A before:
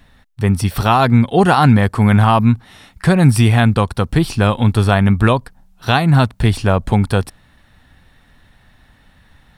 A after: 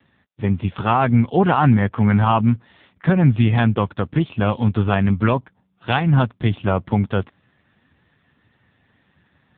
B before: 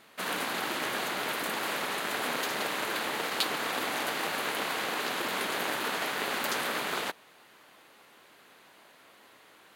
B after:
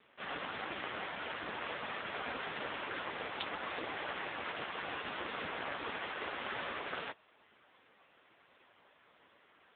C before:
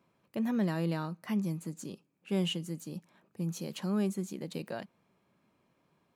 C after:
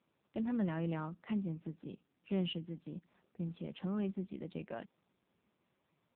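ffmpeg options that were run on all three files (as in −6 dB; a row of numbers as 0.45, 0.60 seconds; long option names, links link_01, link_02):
-af "volume=-3.5dB" -ar 8000 -c:a libopencore_amrnb -b:a 5900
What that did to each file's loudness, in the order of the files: −4.5, −9.5, −5.0 LU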